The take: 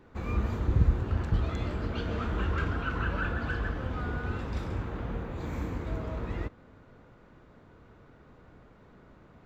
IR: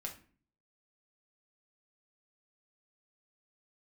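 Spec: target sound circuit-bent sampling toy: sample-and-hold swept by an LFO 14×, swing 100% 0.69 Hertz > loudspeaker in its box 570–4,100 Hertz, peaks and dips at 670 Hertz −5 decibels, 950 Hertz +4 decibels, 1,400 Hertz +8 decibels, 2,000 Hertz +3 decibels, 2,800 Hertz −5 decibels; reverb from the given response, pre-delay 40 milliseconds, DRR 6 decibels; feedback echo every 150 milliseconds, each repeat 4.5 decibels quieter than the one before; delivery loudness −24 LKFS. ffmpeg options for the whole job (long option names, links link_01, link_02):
-filter_complex "[0:a]aecho=1:1:150|300|450|600|750|900|1050|1200|1350:0.596|0.357|0.214|0.129|0.0772|0.0463|0.0278|0.0167|0.01,asplit=2[link_01][link_02];[1:a]atrim=start_sample=2205,adelay=40[link_03];[link_02][link_03]afir=irnorm=-1:irlink=0,volume=-4.5dB[link_04];[link_01][link_04]amix=inputs=2:normalize=0,acrusher=samples=14:mix=1:aa=0.000001:lfo=1:lforange=14:lforate=0.69,highpass=570,equalizer=frequency=670:width_type=q:width=4:gain=-5,equalizer=frequency=950:width_type=q:width=4:gain=4,equalizer=frequency=1400:width_type=q:width=4:gain=8,equalizer=frequency=2000:width_type=q:width=4:gain=3,equalizer=frequency=2800:width_type=q:width=4:gain=-5,lowpass=frequency=4100:width=0.5412,lowpass=frequency=4100:width=1.3066,volume=10.5dB"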